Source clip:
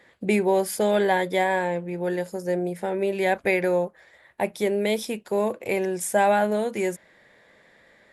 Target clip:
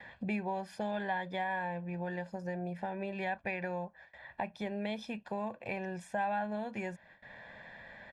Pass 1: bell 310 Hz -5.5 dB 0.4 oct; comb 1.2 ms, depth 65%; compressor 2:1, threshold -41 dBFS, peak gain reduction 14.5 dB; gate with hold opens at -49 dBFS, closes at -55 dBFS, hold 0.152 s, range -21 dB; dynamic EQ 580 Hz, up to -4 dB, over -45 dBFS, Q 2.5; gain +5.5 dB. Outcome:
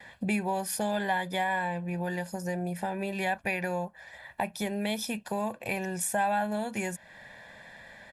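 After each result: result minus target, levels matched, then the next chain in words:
compressor: peak gain reduction -6 dB; 4000 Hz band +4.0 dB
bell 310 Hz -5.5 dB 0.4 oct; comb 1.2 ms, depth 65%; compressor 2:1, threshold -53 dBFS, peak gain reduction 20.5 dB; gate with hold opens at -49 dBFS, closes at -55 dBFS, hold 0.152 s, range -21 dB; dynamic EQ 580 Hz, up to -4 dB, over -45 dBFS, Q 2.5; gain +5.5 dB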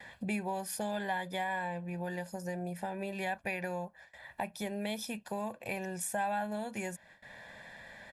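4000 Hz band +4.0 dB
bell 310 Hz -5.5 dB 0.4 oct; comb 1.2 ms, depth 65%; compressor 2:1, threshold -53 dBFS, peak gain reduction 20.5 dB; gate with hold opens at -49 dBFS, closes at -55 dBFS, hold 0.152 s, range -21 dB; dynamic EQ 580 Hz, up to -4 dB, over -45 dBFS, Q 2.5; LPF 3100 Hz 12 dB/oct; gain +5.5 dB

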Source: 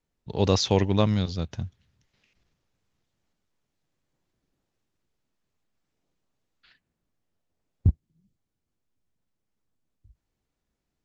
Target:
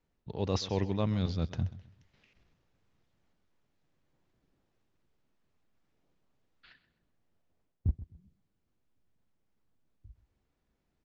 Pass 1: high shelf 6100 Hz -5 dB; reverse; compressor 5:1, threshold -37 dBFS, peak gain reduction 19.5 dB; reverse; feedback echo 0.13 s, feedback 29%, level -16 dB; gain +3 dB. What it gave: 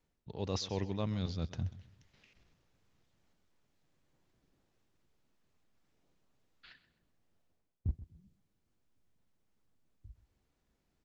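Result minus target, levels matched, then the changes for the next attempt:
compressor: peak gain reduction +5 dB; 8000 Hz band +4.0 dB
change: high shelf 6100 Hz -15 dB; change: compressor 5:1, threshold -30.5 dBFS, peak gain reduction 14.5 dB

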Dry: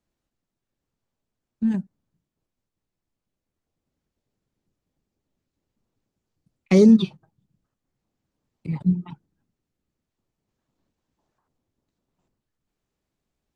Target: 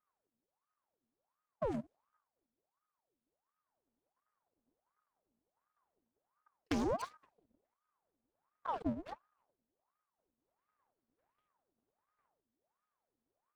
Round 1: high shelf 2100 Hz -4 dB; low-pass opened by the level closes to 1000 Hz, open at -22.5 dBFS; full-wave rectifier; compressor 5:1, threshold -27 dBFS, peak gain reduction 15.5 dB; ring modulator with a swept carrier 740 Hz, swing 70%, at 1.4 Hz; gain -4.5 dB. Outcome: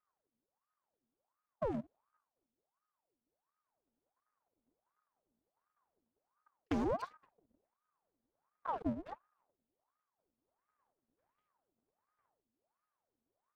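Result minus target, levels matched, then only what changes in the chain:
4000 Hz band -6.0 dB
change: high shelf 2100 Hz +7.5 dB

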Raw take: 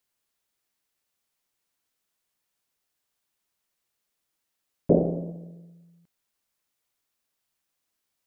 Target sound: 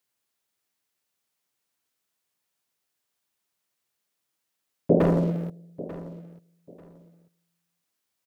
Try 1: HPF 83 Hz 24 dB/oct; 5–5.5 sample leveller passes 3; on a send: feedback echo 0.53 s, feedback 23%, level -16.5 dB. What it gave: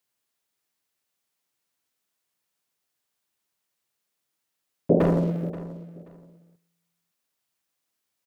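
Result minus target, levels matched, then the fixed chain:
echo 0.361 s early
HPF 83 Hz 24 dB/oct; 5–5.5 sample leveller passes 3; on a send: feedback echo 0.891 s, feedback 23%, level -16.5 dB

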